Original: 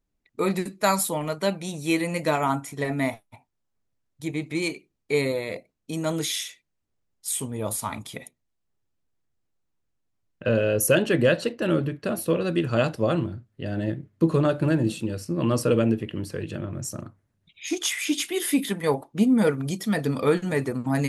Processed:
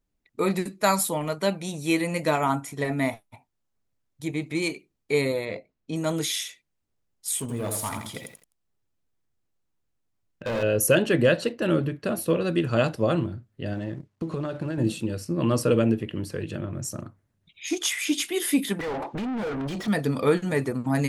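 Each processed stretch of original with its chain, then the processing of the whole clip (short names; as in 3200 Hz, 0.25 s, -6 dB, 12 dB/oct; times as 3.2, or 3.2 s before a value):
5.45–5.96 air absorption 110 m + doubler 19 ms -11 dB
7.4–10.63 hard clip -25.5 dBFS + lo-fi delay 84 ms, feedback 35%, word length 9-bit, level -5 dB
13.73–14.78 G.711 law mismatch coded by A + LPF 7900 Hz + compressor 12:1, threshold -25 dBFS
18.79–19.88 air absorption 54 m + compressor 3:1, threshold -37 dBFS + overdrive pedal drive 35 dB, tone 1500 Hz, clips at -22.5 dBFS
whole clip: dry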